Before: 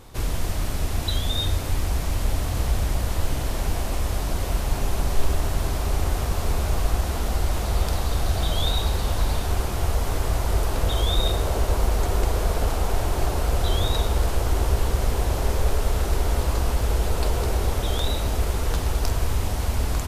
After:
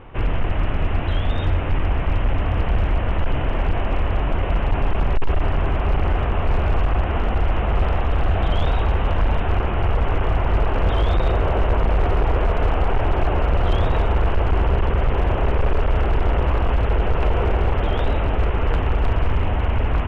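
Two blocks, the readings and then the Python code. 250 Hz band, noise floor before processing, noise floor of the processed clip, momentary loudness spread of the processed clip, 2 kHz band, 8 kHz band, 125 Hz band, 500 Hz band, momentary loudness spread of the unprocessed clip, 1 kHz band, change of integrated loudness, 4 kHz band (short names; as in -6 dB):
+4.5 dB, -27 dBFS, -22 dBFS, 3 LU, +5.5 dB, under -20 dB, +4.0 dB, +5.0 dB, 3 LU, +5.5 dB, +3.5 dB, -5.5 dB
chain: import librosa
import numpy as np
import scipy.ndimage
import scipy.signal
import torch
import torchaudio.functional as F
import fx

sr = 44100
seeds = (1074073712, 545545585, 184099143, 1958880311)

y = scipy.signal.sosfilt(scipy.signal.ellip(4, 1.0, 40, 2900.0, 'lowpass', fs=sr, output='sos'), x)
y = fx.hum_notches(y, sr, base_hz=60, count=4)
y = np.clip(y, -10.0 ** (-19.0 / 20.0), 10.0 ** (-19.0 / 20.0))
y = y * librosa.db_to_amplitude(6.5)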